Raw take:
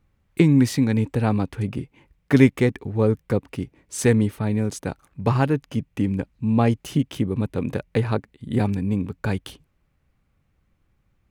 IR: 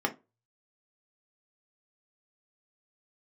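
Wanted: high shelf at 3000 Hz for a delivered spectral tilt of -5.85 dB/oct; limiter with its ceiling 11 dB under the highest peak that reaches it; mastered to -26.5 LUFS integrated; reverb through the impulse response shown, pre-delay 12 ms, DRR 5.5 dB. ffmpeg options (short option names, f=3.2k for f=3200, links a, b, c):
-filter_complex "[0:a]highshelf=f=3k:g=7.5,alimiter=limit=-13dB:level=0:latency=1,asplit=2[a][b];[1:a]atrim=start_sample=2205,adelay=12[c];[b][c]afir=irnorm=-1:irlink=0,volume=-14dB[d];[a][d]amix=inputs=2:normalize=0,volume=-3dB"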